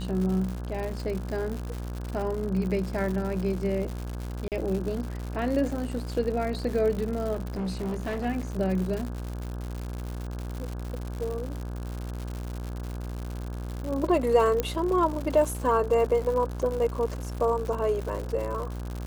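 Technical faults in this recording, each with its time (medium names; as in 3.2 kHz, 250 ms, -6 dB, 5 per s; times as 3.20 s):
buzz 60 Hz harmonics 28 -34 dBFS
crackle 160 per s -32 dBFS
4.48–4.52 s: dropout 38 ms
7.33–8.26 s: clipped -27 dBFS
14.60 s: pop -12 dBFS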